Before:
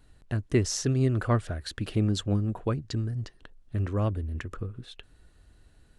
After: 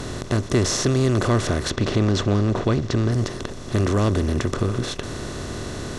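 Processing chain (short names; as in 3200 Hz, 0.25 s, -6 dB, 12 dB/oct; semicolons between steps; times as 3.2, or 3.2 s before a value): per-bin compression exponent 0.4; 1.7–3.12 LPF 5400 Hz 12 dB/oct; in parallel at +1 dB: limiter -19 dBFS, peak gain reduction 11 dB; on the sum: gain -1.5 dB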